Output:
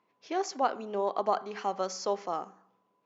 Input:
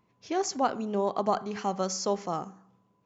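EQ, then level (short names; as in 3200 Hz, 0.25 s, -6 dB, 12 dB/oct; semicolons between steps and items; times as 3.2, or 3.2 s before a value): HPF 370 Hz 12 dB/oct; air absorption 150 m; high shelf 5400 Hz +5.5 dB; 0.0 dB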